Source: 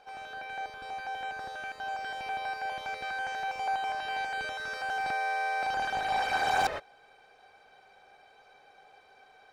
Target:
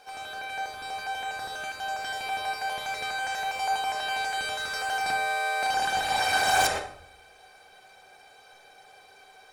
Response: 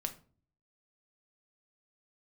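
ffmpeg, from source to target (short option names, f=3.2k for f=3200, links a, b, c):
-filter_complex "[0:a]aemphasis=mode=production:type=75fm[a];[1:a]atrim=start_sample=2205,asetrate=22932,aresample=44100[b];[a][b]afir=irnorm=-1:irlink=0"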